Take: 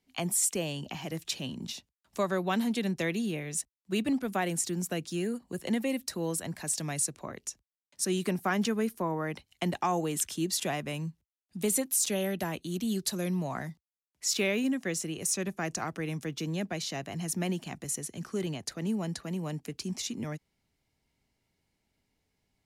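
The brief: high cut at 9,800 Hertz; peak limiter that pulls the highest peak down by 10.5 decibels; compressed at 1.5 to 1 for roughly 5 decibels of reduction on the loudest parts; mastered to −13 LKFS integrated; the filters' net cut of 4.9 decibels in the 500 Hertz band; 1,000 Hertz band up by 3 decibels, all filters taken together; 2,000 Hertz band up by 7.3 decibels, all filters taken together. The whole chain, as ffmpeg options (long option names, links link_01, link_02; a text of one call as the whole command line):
ffmpeg -i in.wav -af "lowpass=9800,equalizer=frequency=500:width_type=o:gain=-8.5,equalizer=frequency=1000:width_type=o:gain=5,equalizer=frequency=2000:width_type=o:gain=8,acompressor=threshold=-35dB:ratio=1.5,volume=23dB,alimiter=limit=-2dB:level=0:latency=1" out.wav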